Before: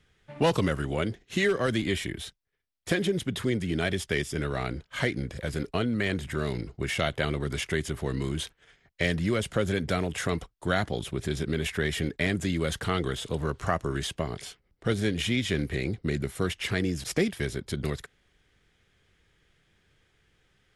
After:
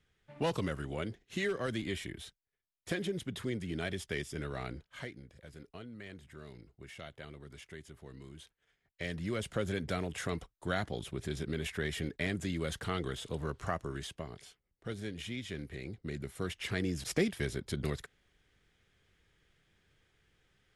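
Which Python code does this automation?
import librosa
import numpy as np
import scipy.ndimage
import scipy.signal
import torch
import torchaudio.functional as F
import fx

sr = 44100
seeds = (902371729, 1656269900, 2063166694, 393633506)

y = fx.gain(x, sr, db=fx.line((4.75, -9.0), (5.22, -20.0), (8.44, -20.0), (9.45, -7.5), (13.63, -7.5), (14.47, -13.5), (15.79, -13.5), (17.05, -4.5)))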